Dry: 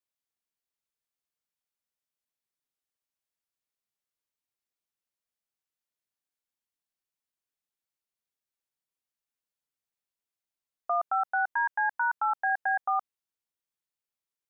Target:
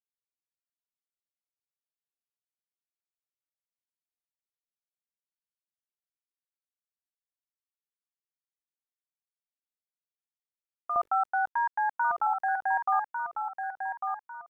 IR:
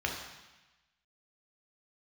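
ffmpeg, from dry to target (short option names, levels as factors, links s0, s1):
-af "bandreject=f=50:t=h:w=6,bandreject=f=100:t=h:w=6,bandreject=f=150:t=h:w=6,bandreject=f=200:t=h:w=6,bandreject=f=250:t=h:w=6,bandreject=f=300:t=h:w=6,bandreject=f=350:t=h:w=6,bandreject=f=400:t=h:w=6,bandreject=f=450:t=h:w=6,bandreject=f=500:t=h:w=6,asetnsamples=n=441:p=0,asendcmd='10.96 equalizer g 3',equalizer=f=720:w=1.4:g=-9.5,aecho=1:1:0.9:0.36,adynamicequalizer=threshold=0.0141:dfrequency=1400:dqfactor=1.4:tfrequency=1400:tqfactor=1.4:attack=5:release=100:ratio=0.375:range=2:mode=cutabove:tftype=bell,acrusher=bits=10:mix=0:aa=0.000001,aecho=1:1:1149|2298|3447|4596:0.501|0.165|0.0546|0.018"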